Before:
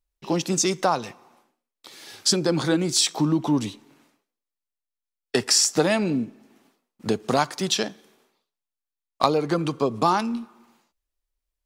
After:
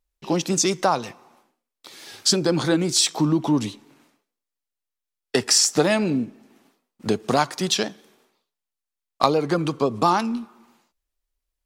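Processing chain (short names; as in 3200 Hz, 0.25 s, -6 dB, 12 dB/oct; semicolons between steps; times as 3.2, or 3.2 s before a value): vibrato 6 Hz 45 cents; gain +1.5 dB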